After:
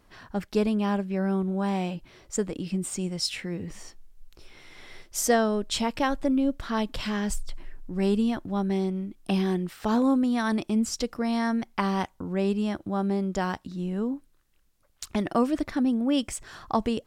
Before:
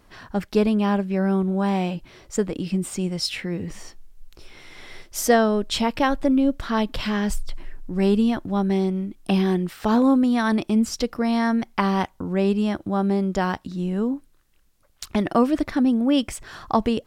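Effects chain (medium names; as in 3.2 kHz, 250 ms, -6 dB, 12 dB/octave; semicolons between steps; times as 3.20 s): dynamic bell 7.6 kHz, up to +6 dB, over -48 dBFS, Q 1.3; trim -5 dB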